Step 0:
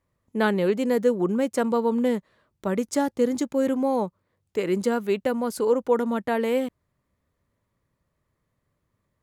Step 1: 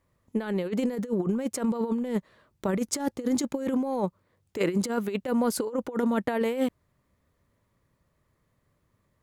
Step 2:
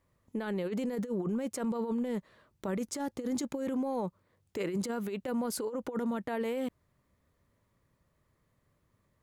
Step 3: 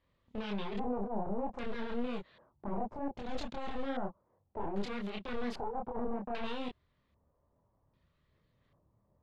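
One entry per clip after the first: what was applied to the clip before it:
compressor with a negative ratio -26 dBFS, ratio -0.5
peak limiter -24 dBFS, peak gain reduction 10.5 dB; trim -2 dB
one-sided wavefolder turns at -37.5 dBFS; chorus voices 4, 1.3 Hz, delay 27 ms, depth 3 ms; LFO low-pass square 0.63 Hz 830–3600 Hz

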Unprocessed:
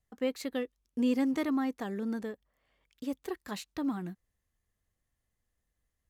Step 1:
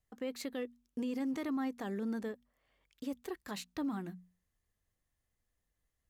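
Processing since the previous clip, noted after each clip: hum notches 60/120/180/240 Hz; peak limiter -28.5 dBFS, peak gain reduction 9.5 dB; trim -1.5 dB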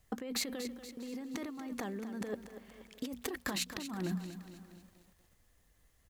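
compressor with a negative ratio -46 dBFS, ratio -1; delay 641 ms -24 dB; bit-crushed delay 237 ms, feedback 55%, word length 11-bit, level -11 dB; trim +6.5 dB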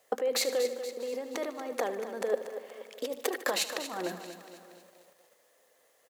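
resonant high-pass 520 Hz, resonance Q 3.5; on a send: feedback delay 75 ms, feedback 58%, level -13.5 dB; on the sum: trim +5.5 dB

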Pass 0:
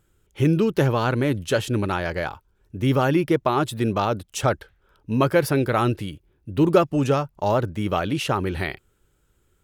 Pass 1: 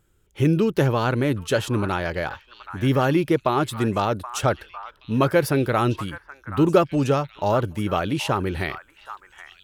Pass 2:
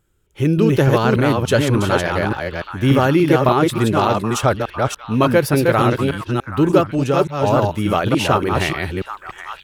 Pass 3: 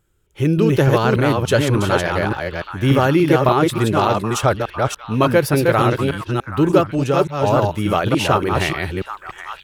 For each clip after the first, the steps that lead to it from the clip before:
repeats whose band climbs or falls 775 ms, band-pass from 1.3 kHz, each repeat 1.4 oct, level -9 dB
chunks repeated in reverse 291 ms, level -3 dB; level rider gain up to 10 dB; trim -1 dB
peaking EQ 240 Hz -4 dB 0.3 oct

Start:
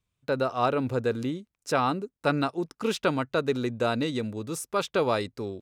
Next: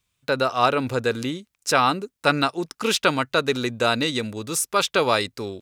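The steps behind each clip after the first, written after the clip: tilt shelf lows -5.5 dB, about 1.1 kHz; trim +7 dB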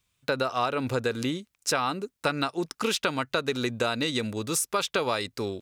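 compression, threshold -23 dBFS, peak gain reduction 10 dB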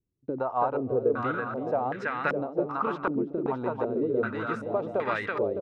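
on a send: bouncing-ball echo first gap 330 ms, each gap 0.85×, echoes 5; on the sum: step-sequenced low-pass 2.6 Hz 340–1800 Hz; trim -5.5 dB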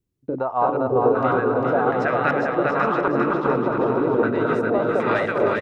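chunks repeated in reverse 319 ms, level -4 dB; on a send: bouncing-ball echo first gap 400 ms, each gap 0.75×, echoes 5; on the sum: trim +5 dB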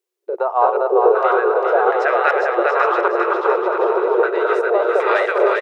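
brick-wall FIR high-pass 350 Hz; trim +5 dB

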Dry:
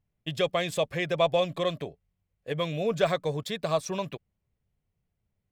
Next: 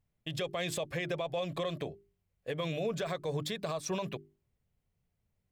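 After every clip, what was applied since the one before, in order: hum notches 50/100/150/200/250/300/350/400 Hz; compression, threshold -25 dBFS, peak gain reduction 8 dB; peak limiter -25.5 dBFS, peak gain reduction 9 dB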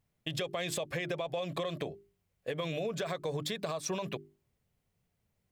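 bass shelf 88 Hz -9 dB; compression, threshold -36 dBFS, peak gain reduction 6.5 dB; trim +4.5 dB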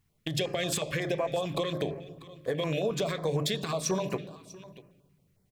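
delay 642 ms -18.5 dB; on a send at -10 dB: reverberation RT60 1.2 s, pre-delay 3 ms; on the sum: step-sequenced notch 11 Hz 600–3500 Hz; trim +6 dB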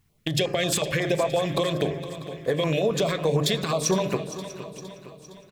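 feedback delay 462 ms, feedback 54%, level -14 dB; trim +6 dB

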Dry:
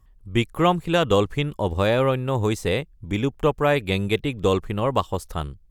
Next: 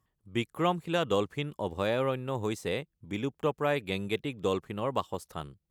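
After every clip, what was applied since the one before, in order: high-pass 130 Hz 12 dB/octave; trim -8.5 dB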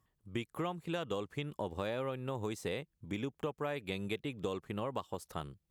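compression, threshold -34 dBFS, peak gain reduction 12 dB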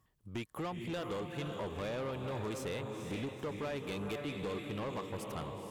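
echo that smears into a reverb 474 ms, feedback 45%, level -6.5 dB; saturation -36 dBFS, distortion -10 dB; trim +2.5 dB

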